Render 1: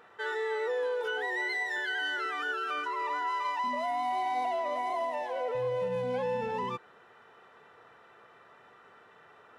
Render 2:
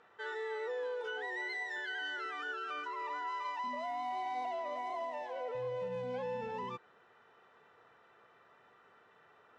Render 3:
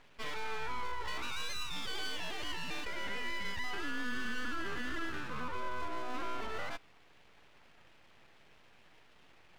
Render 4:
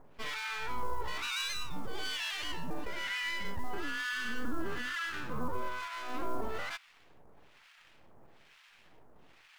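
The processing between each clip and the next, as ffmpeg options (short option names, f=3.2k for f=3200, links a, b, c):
-af "lowpass=f=7.8k:w=0.5412,lowpass=f=7.8k:w=1.3066,volume=-7dB"
-af "aeval=exprs='abs(val(0))':c=same,volume=4dB"
-filter_complex "[0:a]acrossover=split=1100[a][b];[a]aeval=exprs='val(0)*(1-1/2+1/2*cos(2*PI*1.1*n/s))':c=same[c];[b]aeval=exprs='val(0)*(1-1/2-1/2*cos(2*PI*1.1*n/s))':c=same[d];[c][d]amix=inputs=2:normalize=0,acrusher=bits=8:mode=log:mix=0:aa=0.000001,volume=7dB"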